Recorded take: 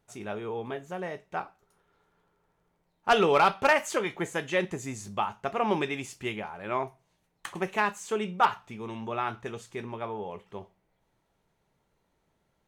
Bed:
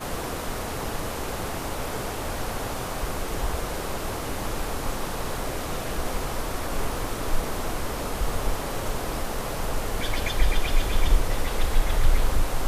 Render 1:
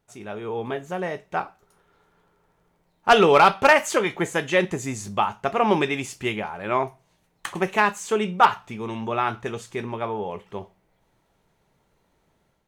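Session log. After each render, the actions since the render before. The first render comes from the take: AGC gain up to 7 dB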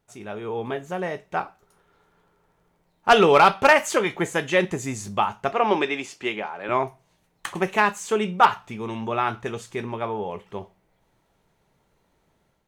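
5.52–6.69 three-band isolator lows -17 dB, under 230 Hz, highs -12 dB, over 6500 Hz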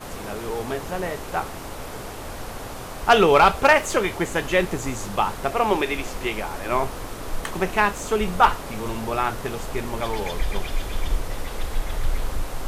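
add bed -4 dB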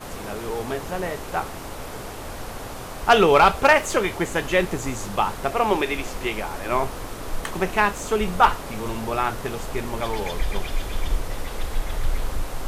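nothing audible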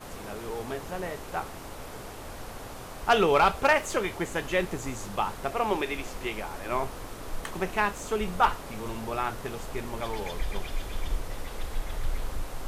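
gain -6.5 dB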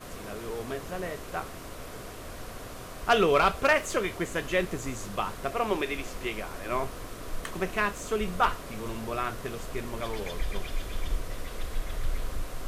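notch 850 Hz, Q 5.5

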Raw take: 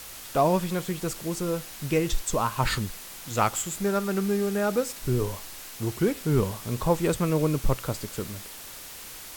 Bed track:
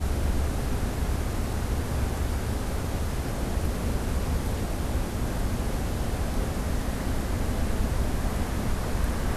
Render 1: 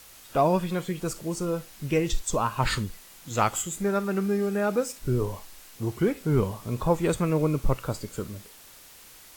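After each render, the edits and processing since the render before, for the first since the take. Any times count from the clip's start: noise print and reduce 8 dB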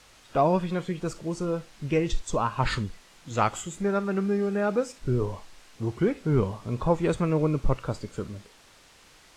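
LPF 7300 Hz 12 dB/oct; high shelf 4100 Hz -5.5 dB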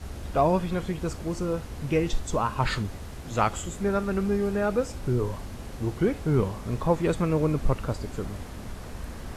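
add bed track -10.5 dB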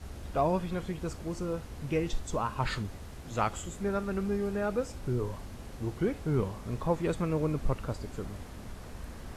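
gain -5.5 dB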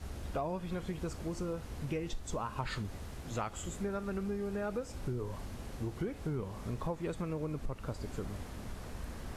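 compressor 6:1, threshold -33 dBFS, peak gain reduction 11 dB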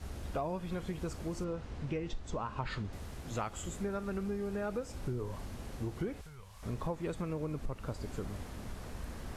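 1.44–2.93 air absorption 88 m; 6.21–6.63 passive tone stack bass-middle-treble 10-0-10

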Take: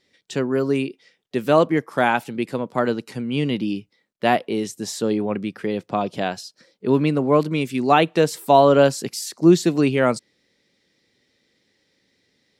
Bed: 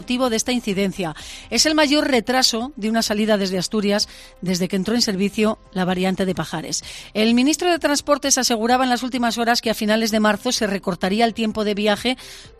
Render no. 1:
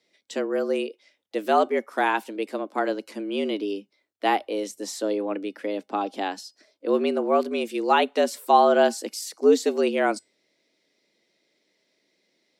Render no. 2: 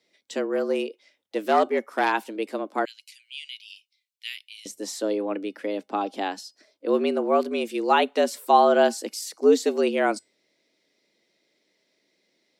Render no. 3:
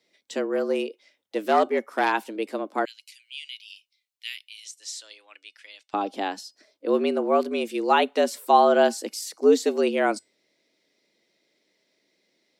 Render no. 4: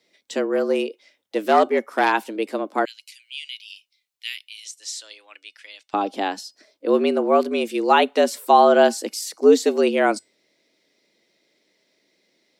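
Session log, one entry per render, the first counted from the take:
resonator 700 Hz, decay 0.21 s, harmonics all, mix 40%; frequency shift +96 Hz
0.53–2.12 self-modulated delay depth 0.069 ms; 2.85–4.66 steep high-pass 2400 Hz
4.65–5.94 Butterworth band-pass 4800 Hz, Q 0.74
gain +4 dB; limiter -3 dBFS, peak gain reduction 1.5 dB

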